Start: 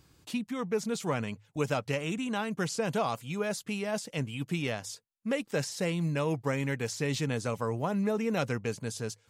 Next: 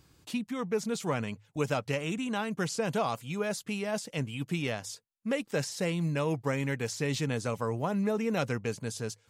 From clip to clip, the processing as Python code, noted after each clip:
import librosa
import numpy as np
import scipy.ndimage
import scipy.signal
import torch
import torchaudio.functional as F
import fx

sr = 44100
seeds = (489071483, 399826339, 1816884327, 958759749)

y = x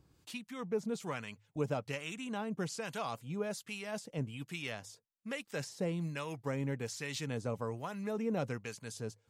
y = fx.harmonic_tremolo(x, sr, hz=1.2, depth_pct=70, crossover_hz=1000.0)
y = F.gain(torch.from_numpy(y), -3.5).numpy()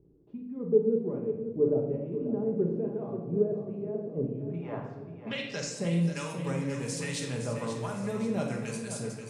y = fx.filter_sweep_lowpass(x, sr, from_hz=400.0, to_hz=9400.0, start_s=4.3, end_s=5.82, q=3.6)
y = fx.echo_feedback(y, sr, ms=535, feedback_pct=47, wet_db=-10.0)
y = fx.room_shoebox(y, sr, seeds[0], volume_m3=510.0, walls='mixed', distance_m=1.3)